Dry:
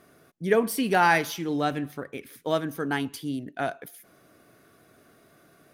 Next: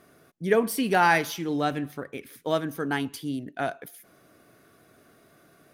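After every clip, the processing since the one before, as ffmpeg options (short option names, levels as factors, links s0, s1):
-af anull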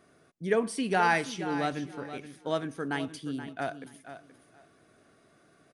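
-af "aecho=1:1:476|952|1428:0.251|0.0502|0.01,aresample=22050,aresample=44100,volume=0.596"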